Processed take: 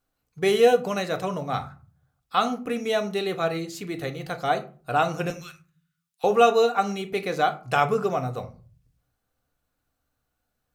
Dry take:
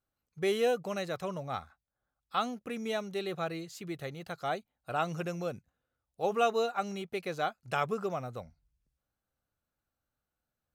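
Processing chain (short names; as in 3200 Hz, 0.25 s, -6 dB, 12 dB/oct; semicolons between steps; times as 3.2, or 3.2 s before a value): 5.3–6.24 Bessel high-pass 2000 Hz, order 8; on a send: reverb RT60 0.40 s, pre-delay 3 ms, DRR 6.5 dB; on the sum: gain +8 dB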